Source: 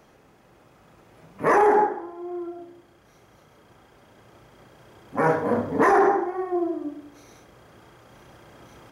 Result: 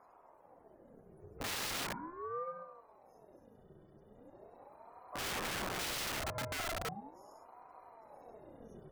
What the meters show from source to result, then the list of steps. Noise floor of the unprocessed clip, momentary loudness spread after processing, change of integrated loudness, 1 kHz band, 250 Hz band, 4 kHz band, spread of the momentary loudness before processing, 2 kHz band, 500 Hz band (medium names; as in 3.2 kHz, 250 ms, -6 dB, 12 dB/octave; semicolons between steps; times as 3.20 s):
-56 dBFS, 21 LU, -16.5 dB, -20.0 dB, -21.0 dB, no reading, 17 LU, -11.5 dB, -21.5 dB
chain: FFT filter 120 Hz 0 dB, 220 Hz -5 dB, 450 Hz -10 dB, 670 Hz -17 dB, 2.3 kHz -19 dB, 3.5 kHz -17 dB, 11 kHz -3 dB; loudest bins only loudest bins 64; integer overflow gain 34.5 dB; ring modulator with a swept carrier 560 Hz, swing 55%, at 0.39 Hz; trim +3.5 dB